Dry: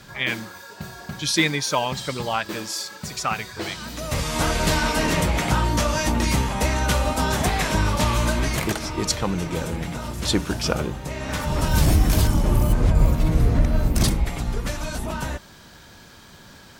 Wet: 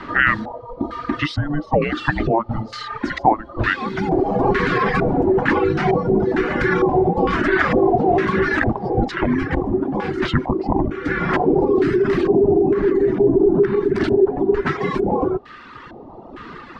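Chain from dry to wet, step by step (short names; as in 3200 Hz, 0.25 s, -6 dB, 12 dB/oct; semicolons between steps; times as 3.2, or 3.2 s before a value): frequency shift -440 Hz; bell 4500 Hz +4 dB 0.66 oct; in parallel at +2.5 dB: compressor, threshold -28 dBFS, peak gain reduction 15.5 dB; on the sum: limiter -10.5 dBFS, peak gain reduction 7.5 dB; LFO low-pass square 1.1 Hz 760–1700 Hz; reverb removal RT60 1.3 s; gain +4 dB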